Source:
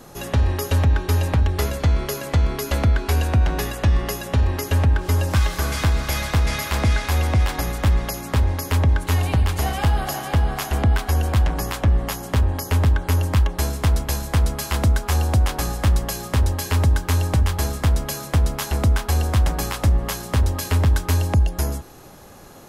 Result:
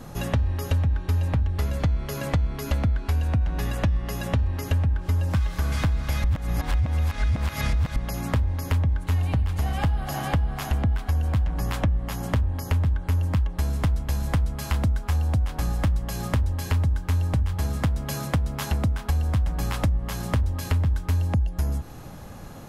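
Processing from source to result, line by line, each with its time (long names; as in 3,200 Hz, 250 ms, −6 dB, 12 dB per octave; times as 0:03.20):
0:06.24–0:07.96: reverse
0:17.54–0:19.10: high-pass filter 65 Hz
whole clip: bass and treble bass +8 dB, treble −4 dB; downward compressor 6 to 1, threshold −21 dBFS; parametric band 380 Hz −6.5 dB 0.26 octaves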